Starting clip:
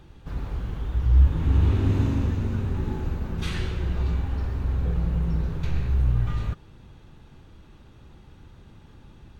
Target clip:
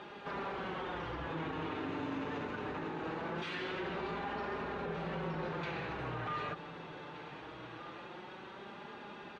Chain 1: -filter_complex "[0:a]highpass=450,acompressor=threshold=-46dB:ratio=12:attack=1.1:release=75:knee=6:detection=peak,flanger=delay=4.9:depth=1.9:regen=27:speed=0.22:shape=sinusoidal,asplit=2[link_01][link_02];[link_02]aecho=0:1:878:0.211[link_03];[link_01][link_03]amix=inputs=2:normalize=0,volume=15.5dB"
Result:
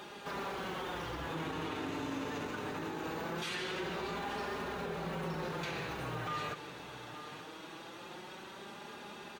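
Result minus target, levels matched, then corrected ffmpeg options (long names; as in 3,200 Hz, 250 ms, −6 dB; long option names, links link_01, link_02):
echo 647 ms early; 4,000 Hz band +4.0 dB
-filter_complex "[0:a]highpass=450,acompressor=threshold=-46dB:ratio=12:attack=1.1:release=75:knee=6:detection=peak,lowpass=2900,flanger=delay=4.9:depth=1.9:regen=27:speed=0.22:shape=sinusoidal,asplit=2[link_01][link_02];[link_02]aecho=0:1:1525:0.211[link_03];[link_01][link_03]amix=inputs=2:normalize=0,volume=15.5dB"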